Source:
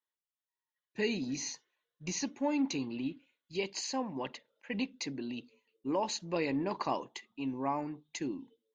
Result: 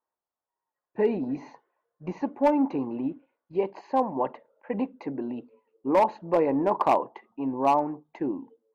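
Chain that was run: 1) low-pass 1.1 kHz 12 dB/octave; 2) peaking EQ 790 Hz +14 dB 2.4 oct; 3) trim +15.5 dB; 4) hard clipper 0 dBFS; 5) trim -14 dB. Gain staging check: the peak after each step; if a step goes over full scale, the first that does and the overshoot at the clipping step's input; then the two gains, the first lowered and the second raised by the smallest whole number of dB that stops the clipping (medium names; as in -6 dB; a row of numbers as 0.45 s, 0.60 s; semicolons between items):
-21.0 dBFS, -9.5 dBFS, +6.0 dBFS, 0.0 dBFS, -14.0 dBFS; step 3, 6.0 dB; step 3 +9.5 dB, step 5 -8 dB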